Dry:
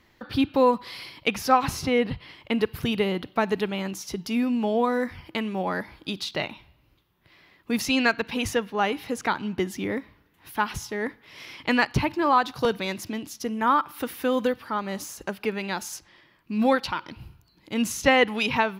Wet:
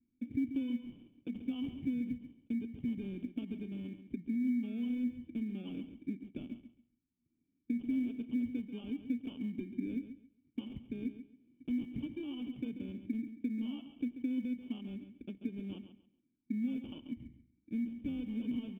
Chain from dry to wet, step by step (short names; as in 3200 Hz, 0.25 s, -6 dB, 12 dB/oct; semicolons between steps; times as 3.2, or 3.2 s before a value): low-pass opened by the level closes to 340 Hz, open at -18 dBFS; gate -51 dBFS, range -11 dB; bell 240 Hz +10 dB 0.21 oct; limiter -17.5 dBFS, peak gain reduction 11.5 dB; compressor 6:1, threshold -30 dBFS, peak gain reduction 9.5 dB; sample-and-hold 22×; vocal tract filter i; short-mantissa float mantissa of 6-bit; feedback echo 0.137 s, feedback 22%, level -11 dB; gain +1 dB